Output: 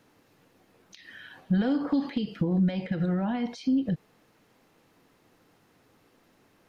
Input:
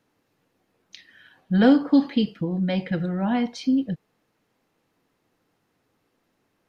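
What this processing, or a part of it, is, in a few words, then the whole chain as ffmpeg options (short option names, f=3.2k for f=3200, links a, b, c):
de-esser from a sidechain: -filter_complex "[0:a]asplit=2[a][b];[b]highpass=f=4.7k:p=1,apad=whole_len=294735[c];[a][c]sidechaincompress=threshold=-57dB:ratio=3:attack=1.1:release=79,volume=8dB"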